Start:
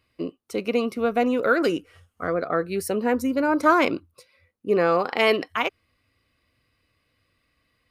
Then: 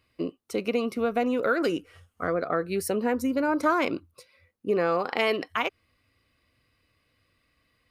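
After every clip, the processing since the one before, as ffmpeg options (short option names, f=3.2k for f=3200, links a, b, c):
-af "acompressor=threshold=-24dB:ratio=2"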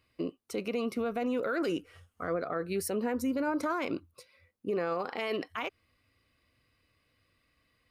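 -af "alimiter=limit=-21dB:level=0:latency=1:release=30,volume=-2.5dB"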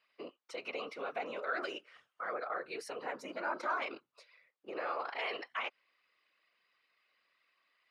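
-af "afftfilt=real='hypot(re,im)*cos(2*PI*random(0))':imag='hypot(re,im)*sin(2*PI*random(1))':win_size=512:overlap=0.75,highpass=780,lowpass=4.2k,volume=6dB"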